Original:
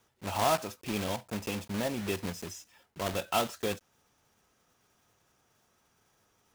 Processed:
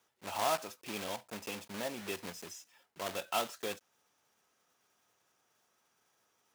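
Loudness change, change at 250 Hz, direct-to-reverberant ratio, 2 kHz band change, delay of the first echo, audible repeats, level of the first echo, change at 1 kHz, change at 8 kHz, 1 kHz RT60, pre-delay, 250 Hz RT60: -5.0 dB, -10.0 dB, no reverb, -3.5 dB, no echo, no echo, no echo, -4.5 dB, -3.5 dB, no reverb, no reverb, no reverb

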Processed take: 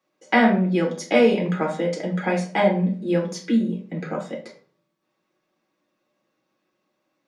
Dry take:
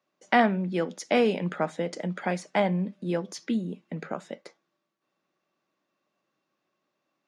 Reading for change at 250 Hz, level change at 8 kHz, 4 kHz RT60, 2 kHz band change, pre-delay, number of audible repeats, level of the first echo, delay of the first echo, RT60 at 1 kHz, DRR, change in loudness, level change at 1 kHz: +7.0 dB, +4.0 dB, 0.30 s, +5.5 dB, 5 ms, no echo, no echo, no echo, 0.40 s, -2.0 dB, +6.0 dB, +3.0 dB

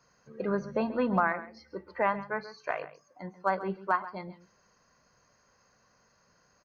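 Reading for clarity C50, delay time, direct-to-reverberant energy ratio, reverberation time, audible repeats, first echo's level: no reverb, 135 ms, no reverb, no reverb, 1, -15.5 dB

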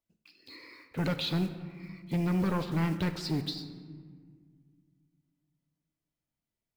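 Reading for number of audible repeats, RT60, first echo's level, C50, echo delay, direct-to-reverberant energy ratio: no echo, 1.9 s, no echo, 10.0 dB, no echo, 9.0 dB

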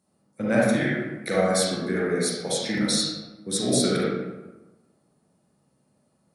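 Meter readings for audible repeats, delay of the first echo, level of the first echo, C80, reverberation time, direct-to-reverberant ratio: no echo, no echo, no echo, 1.5 dB, 1.1 s, -6.0 dB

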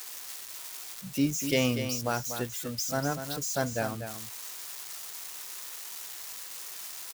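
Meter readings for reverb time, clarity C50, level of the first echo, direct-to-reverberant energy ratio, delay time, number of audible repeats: no reverb, no reverb, -9.0 dB, no reverb, 243 ms, 1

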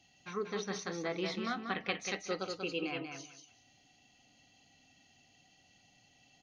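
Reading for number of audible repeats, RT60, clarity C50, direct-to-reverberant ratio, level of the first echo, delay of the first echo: 3, no reverb, no reverb, no reverb, -5.5 dB, 188 ms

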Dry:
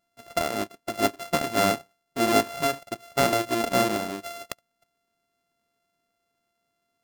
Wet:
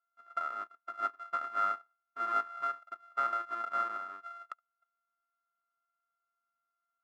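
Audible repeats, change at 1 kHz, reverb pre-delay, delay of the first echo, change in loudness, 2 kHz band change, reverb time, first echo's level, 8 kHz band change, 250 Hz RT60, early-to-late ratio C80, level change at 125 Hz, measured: no echo, -5.5 dB, no reverb, no echo, -9.5 dB, -12.0 dB, no reverb, no echo, under -30 dB, no reverb, no reverb, under -35 dB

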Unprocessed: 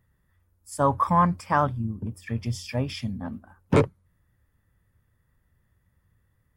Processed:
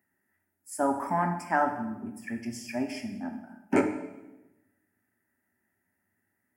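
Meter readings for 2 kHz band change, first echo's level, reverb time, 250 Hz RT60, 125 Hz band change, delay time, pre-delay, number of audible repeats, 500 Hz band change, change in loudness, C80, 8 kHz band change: +0.5 dB, no echo, 1.0 s, 1.3 s, -14.0 dB, no echo, 5 ms, no echo, -4.0 dB, -4.5 dB, 10.5 dB, -1.0 dB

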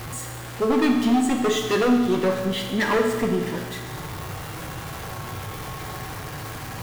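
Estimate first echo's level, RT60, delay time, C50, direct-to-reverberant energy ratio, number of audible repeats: no echo, 1.5 s, no echo, 4.5 dB, 2.0 dB, no echo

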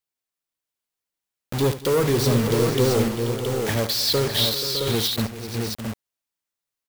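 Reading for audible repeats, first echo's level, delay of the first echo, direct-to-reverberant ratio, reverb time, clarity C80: 6, -13.0 dB, 72 ms, no reverb, no reverb, no reverb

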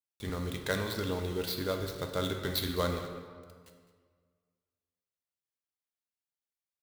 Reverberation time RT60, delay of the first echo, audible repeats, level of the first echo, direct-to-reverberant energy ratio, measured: 1.8 s, 209 ms, 1, -16.5 dB, 3.5 dB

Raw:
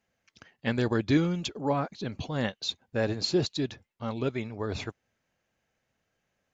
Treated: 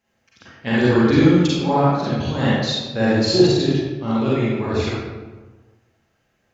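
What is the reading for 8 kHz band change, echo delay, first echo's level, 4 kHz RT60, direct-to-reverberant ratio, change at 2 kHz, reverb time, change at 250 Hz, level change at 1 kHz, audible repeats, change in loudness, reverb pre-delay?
no reading, no echo, no echo, 0.75 s, -8.0 dB, +11.0 dB, 1.3 s, +13.0 dB, +12.5 dB, no echo, +12.0 dB, 36 ms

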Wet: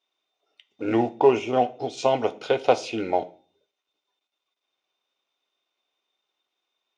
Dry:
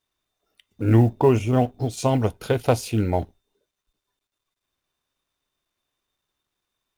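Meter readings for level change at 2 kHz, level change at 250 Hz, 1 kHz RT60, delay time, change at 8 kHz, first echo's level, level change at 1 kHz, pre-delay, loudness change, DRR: +1.5 dB, -5.0 dB, 0.40 s, no echo, -6.5 dB, no echo, +3.0 dB, 3 ms, -2.0 dB, 8.0 dB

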